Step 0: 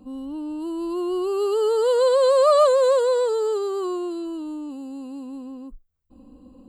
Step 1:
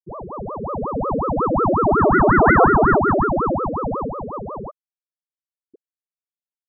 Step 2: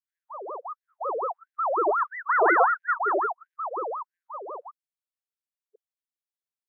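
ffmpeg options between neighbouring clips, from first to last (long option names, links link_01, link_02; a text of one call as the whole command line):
ffmpeg -i in.wav -af "afftfilt=real='re*gte(hypot(re,im),0.282)':imag='im*gte(hypot(re,im),0.282)':win_size=1024:overlap=0.75,aeval=exprs='val(0)*sin(2*PI*500*n/s+500*0.85/5.5*sin(2*PI*5.5*n/s))':channel_layout=same,volume=6dB" out.wav
ffmpeg -i in.wav -af "afftfilt=real='re*gte(b*sr/1024,310*pow(1600/310,0.5+0.5*sin(2*PI*1.5*pts/sr)))':imag='im*gte(b*sr/1024,310*pow(1600/310,0.5+0.5*sin(2*PI*1.5*pts/sr)))':win_size=1024:overlap=0.75,volume=-5dB" out.wav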